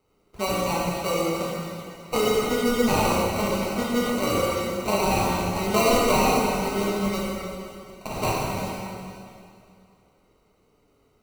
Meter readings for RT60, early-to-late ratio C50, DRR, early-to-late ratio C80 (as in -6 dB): 2.5 s, -2.0 dB, -5.5 dB, -0.5 dB